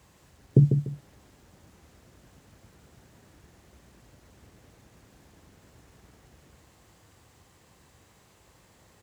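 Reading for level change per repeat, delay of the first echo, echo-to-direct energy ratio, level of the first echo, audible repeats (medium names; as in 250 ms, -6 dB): -11.5 dB, 147 ms, -6.5 dB, -7.0 dB, 2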